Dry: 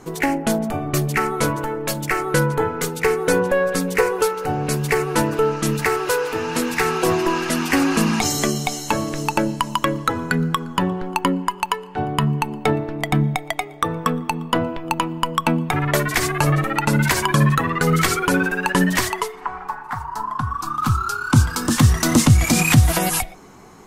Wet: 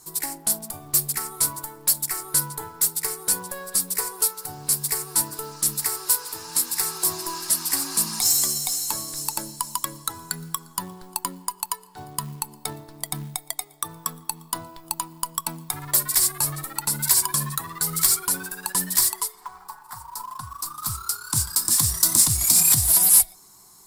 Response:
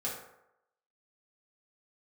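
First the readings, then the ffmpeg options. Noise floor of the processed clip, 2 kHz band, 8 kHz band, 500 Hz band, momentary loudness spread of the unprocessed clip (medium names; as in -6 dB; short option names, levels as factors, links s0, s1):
-51 dBFS, -15.5 dB, +7.0 dB, -20.0 dB, 8 LU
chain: -af "aexciter=amount=14.4:drive=6.5:freq=4200,equalizer=f=250:t=o:w=0.33:g=-9,equalizer=f=500:t=o:w=0.33:g=-11,equalizer=f=1000:t=o:w=0.33:g=7,equalizer=f=6300:t=o:w=0.33:g=-11,acrusher=bits=4:mode=log:mix=0:aa=0.000001,volume=0.168"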